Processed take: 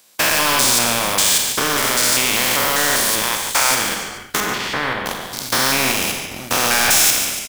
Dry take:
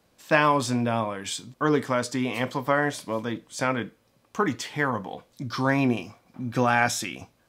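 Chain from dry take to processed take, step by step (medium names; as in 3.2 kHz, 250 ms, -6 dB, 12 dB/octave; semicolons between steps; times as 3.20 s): spectrogram pixelated in time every 200 ms; tilt EQ +4.5 dB/octave; waveshaping leveller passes 3; 3.22–3.71 s: resonant high-pass 890 Hz, resonance Q 3.4; in parallel at -5 dB: small samples zeroed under -20 dBFS; 4.40–5.06 s: on the sum: distance through air 460 m; on a send: frequency-shifting echo 144 ms, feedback 36%, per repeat -55 Hz, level -15 dB; on the sum: Schroeder reverb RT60 0.55 s, combs from 30 ms, DRR 6 dB; spectrum-flattening compressor 2:1; trim -3 dB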